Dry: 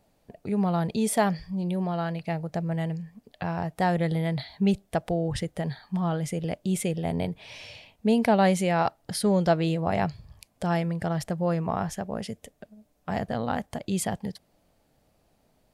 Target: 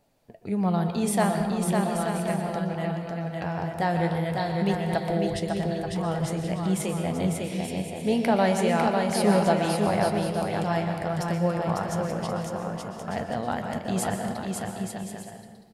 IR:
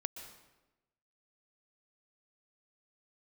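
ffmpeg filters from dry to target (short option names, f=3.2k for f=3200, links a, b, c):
-filter_complex "[0:a]lowshelf=f=180:g=-3,flanger=delay=6.8:depth=7.4:regen=64:speed=0.41:shape=triangular,aecho=1:1:550|880|1078|1197|1268:0.631|0.398|0.251|0.158|0.1[a];[1:a]atrim=start_sample=2205[b];[a][b]afir=irnorm=-1:irlink=0,volume=5dB"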